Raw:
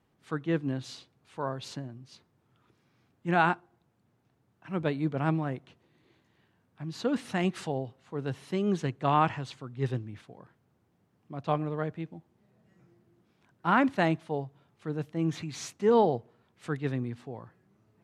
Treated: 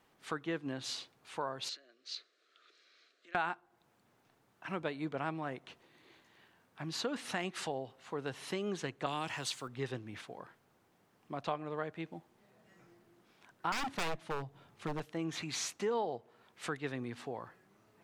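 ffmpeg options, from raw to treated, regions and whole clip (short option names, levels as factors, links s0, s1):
-filter_complex "[0:a]asettb=1/sr,asplit=3[s0][s1][s2];[s0]atrim=end=1.694[s3];[s1]atrim=start=1.69:end=3.35,asetpts=PTS-STARTPTS,afade=t=in:d=0.004:c=qsin,afade=t=out:st=1.656:d=0.004:c=qsin,acompressor=threshold=0.00398:ratio=10:attack=3.2:release=140:knee=1:detection=peak,asuperstop=centerf=900:order=4:qfactor=1.7,highpass=f=420:w=0.5412,highpass=f=420:w=1.3066,equalizer=f=550:t=q:w=4:g=-4,equalizer=f=820:t=q:w=4:g=-5,equalizer=f=4100:t=q:w=4:g=10,lowpass=f=7400:w=0.5412,lowpass=f=7400:w=1.3066[s4];[s2]atrim=start=3.346[s5];[s3][s4]acrossfade=d=0.004:c1=hsin:c2=qsin[s6];[s6][s5]acrossfade=d=0.004:c1=qsin:c2=hsin,asettb=1/sr,asplit=3[s7][s8][s9];[s7]atrim=end=9.064[s10];[s8]atrim=start=9.06:end=9.68,asetpts=PTS-STARTPTS,afade=t=in:d=0.004:c=qsin,afade=t=out:st=0.616:d=0.004:c=qsin,aemphasis=mode=production:type=75kf,acrossover=split=500|3000[s11][s12][s13];[s12]acompressor=threshold=0.0224:ratio=6:attack=3.2:release=140:knee=2.83:detection=peak[s14];[s11][s14][s13]amix=inputs=3:normalize=0[s15];[s9]atrim=start=9.676[s16];[s10][s15]acrossfade=d=0.004:c1=hsin:c2=qsin[s17];[s17][s16]acrossfade=d=0.004:c1=qsin:c2=hsin,asettb=1/sr,asplit=3[s18][s19][s20];[s18]atrim=end=13.724[s21];[s19]atrim=start=13.72:end=15,asetpts=PTS-STARTPTS,afade=t=in:d=0.004:c=qsin,afade=t=out:st=1.276:d=0.004:c=qsin,lowshelf=f=190:g=12,aeval=exprs='0.0708*(abs(mod(val(0)/0.0708+3,4)-2)-1)':c=same[s22];[s20]atrim=start=14.996[s23];[s21][s22]acrossfade=d=0.004:c1=hsin:c2=qsin[s24];[s24][s23]acrossfade=d=0.004:c1=qsin:c2=hsin,equalizer=f=94:w=0.33:g=-14.5,acompressor=threshold=0.00631:ratio=3,volume=2.37"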